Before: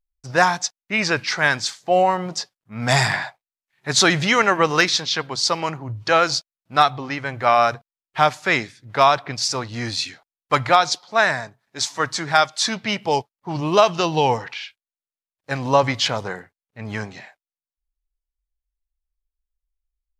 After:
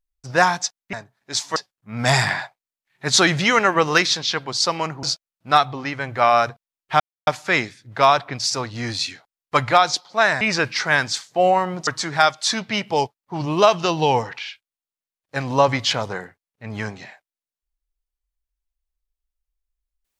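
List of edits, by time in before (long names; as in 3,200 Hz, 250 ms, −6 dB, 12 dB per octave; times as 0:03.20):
0:00.93–0:02.39: swap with 0:11.39–0:12.02
0:05.86–0:06.28: remove
0:08.25: splice in silence 0.27 s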